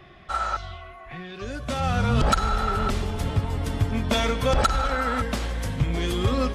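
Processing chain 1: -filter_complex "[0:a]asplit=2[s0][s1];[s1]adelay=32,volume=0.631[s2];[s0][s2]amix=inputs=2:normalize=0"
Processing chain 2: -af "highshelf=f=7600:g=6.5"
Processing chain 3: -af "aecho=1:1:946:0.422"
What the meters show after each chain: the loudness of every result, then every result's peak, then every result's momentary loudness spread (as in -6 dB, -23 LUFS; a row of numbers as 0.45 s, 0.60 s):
-23.5 LUFS, -25.0 LUFS, -25.0 LUFS; -8.5 dBFS, -10.5 dBFS, -11.0 dBFS; 14 LU, 13 LU, 10 LU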